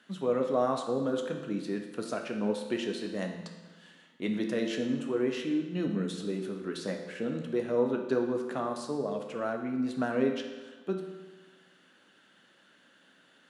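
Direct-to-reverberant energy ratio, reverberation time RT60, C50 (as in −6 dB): 3.0 dB, 1.3 s, 6.0 dB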